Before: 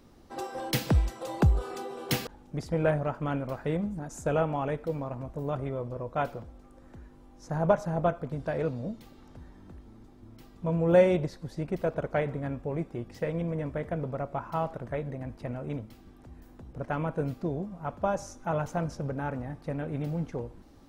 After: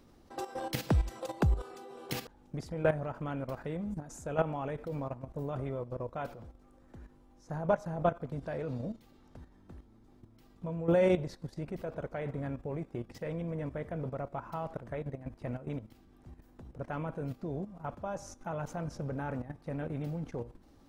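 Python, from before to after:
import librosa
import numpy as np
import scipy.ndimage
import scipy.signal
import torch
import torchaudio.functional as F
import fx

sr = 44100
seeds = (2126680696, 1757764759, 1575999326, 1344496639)

y = fx.level_steps(x, sr, step_db=12)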